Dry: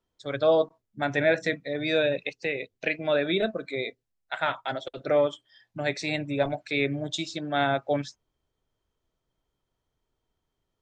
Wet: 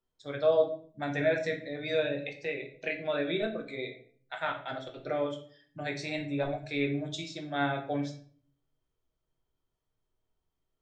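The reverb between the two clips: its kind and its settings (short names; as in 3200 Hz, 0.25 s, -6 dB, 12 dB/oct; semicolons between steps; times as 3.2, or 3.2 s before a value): shoebox room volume 54 m³, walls mixed, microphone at 0.51 m; gain -8 dB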